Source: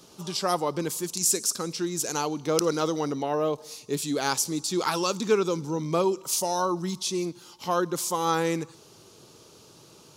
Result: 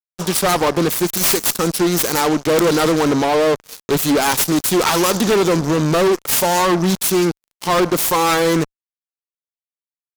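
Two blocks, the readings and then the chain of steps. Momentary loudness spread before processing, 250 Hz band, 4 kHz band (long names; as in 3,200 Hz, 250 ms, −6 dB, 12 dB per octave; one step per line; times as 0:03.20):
6 LU, +12.0 dB, +10.5 dB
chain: phase distortion by the signal itself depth 0.46 ms
fuzz pedal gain 31 dB, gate −39 dBFS
level +1.5 dB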